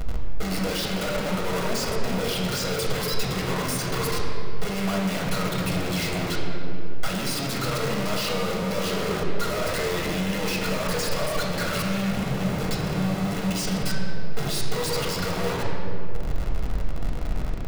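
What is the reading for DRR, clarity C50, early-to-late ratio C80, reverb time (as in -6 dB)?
-2.0 dB, 1.5 dB, 3.0 dB, 3.0 s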